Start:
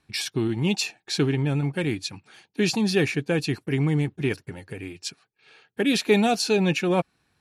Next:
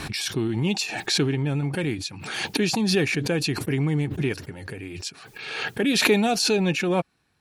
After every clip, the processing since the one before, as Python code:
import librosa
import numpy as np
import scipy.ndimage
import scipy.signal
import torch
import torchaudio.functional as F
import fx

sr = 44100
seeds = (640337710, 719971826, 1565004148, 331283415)

y = fx.pre_swell(x, sr, db_per_s=40.0)
y = y * 10.0 ** (-1.0 / 20.0)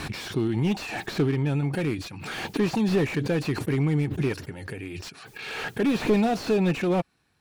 y = fx.slew_limit(x, sr, full_power_hz=59.0)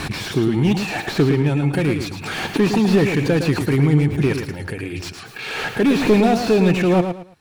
y = fx.echo_feedback(x, sr, ms=110, feedback_pct=26, wet_db=-7.5)
y = y * 10.0 ** (7.0 / 20.0)